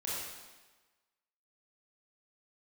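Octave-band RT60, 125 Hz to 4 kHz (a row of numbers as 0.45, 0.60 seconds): 1.0, 1.2, 1.2, 1.3, 1.2, 1.2 seconds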